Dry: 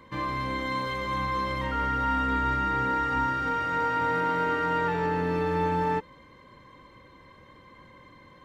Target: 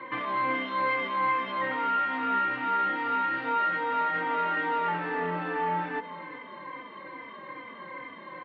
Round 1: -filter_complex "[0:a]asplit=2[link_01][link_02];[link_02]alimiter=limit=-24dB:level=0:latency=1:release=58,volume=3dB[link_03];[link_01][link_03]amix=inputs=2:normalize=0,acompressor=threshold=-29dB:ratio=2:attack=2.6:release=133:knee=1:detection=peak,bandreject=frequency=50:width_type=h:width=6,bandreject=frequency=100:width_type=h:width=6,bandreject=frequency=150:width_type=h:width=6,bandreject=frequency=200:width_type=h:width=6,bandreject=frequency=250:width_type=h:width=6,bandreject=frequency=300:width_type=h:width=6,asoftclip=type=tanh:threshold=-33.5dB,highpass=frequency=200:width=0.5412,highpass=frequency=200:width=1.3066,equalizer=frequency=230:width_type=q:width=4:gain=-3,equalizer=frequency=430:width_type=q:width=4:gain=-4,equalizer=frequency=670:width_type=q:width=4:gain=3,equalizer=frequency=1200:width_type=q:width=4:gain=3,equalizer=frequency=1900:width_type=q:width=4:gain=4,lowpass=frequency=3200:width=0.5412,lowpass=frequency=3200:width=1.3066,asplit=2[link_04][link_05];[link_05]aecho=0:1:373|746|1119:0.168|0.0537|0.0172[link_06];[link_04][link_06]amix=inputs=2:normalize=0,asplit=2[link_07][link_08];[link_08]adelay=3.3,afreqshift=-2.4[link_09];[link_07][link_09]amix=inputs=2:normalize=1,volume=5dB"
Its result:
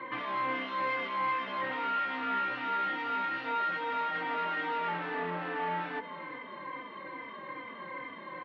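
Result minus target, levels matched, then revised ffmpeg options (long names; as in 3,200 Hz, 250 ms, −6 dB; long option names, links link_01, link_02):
soft clipping: distortion +7 dB
-filter_complex "[0:a]asplit=2[link_01][link_02];[link_02]alimiter=limit=-24dB:level=0:latency=1:release=58,volume=3dB[link_03];[link_01][link_03]amix=inputs=2:normalize=0,acompressor=threshold=-29dB:ratio=2:attack=2.6:release=133:knee=1:detection=peak,bandreject=frequency=50:width_type=h:width=6,bandreject=frequency=100:width_type=h:width=6,bandreject=frequency=150:width_type=h:width=6,bandreject=frequency=200:width_type=h:width=6,bandreject=frequency=250:width_type=h:width=6,bandreject=frequency=300:width_type=h:width=6,asoftclip=type=tanh:threshold=-25.5dB,highpass=frequency=200:width=0.5412,highpass=frequency=200:width=1.3066,equalizer=frequency=230:width_type=q:width=4:gain=-3,equalizer=frequency=430:width_type=q:width=4:gain=-4,equalizer=frequency=670:width_type=q:width=4:gain=3,equalizer=frequency=1200:width_type=q:width=4:gain=3,equalizer=frequency=1900:width_type=q:width=4:gain=4,lowpass=frequency=3200:width=0.5412,lowpass=frequency=3200:width=1.3066,asplit=2[link_04][link_05];[link_05]aecho=0:1:373|746|1119:0.168|0.0537|0.0172[link_06];[link_04][link_06]amix=inputs=2:normalize=0,asplit=2[link_07][link_08];[link_08]adelay=3.3,afreqshift=-2.4[link_09];[link_07][link_09]amix=inputs=2:normalize=1,volume=5dB"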